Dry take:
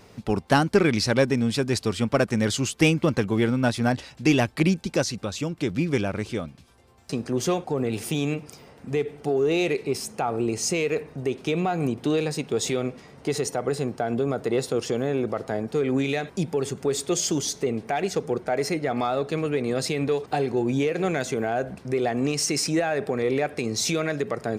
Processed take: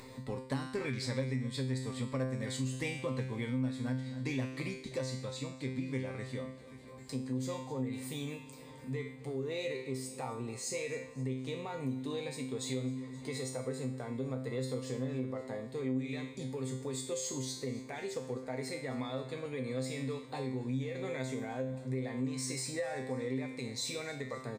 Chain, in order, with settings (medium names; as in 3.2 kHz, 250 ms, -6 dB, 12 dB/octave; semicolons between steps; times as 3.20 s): rippled EQ curve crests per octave 1, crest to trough 10 dB; on a send: feedback delay 262 ms, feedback 54%, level -19.5 dB; on the sum: upward compressor, threshold -29 dBFS; feedback comb 130 Hz, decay 0.56 s, harmonics all, mix 90%; compression 3:1, threshold -33 dBFS, peak gain reduction 10.5 dB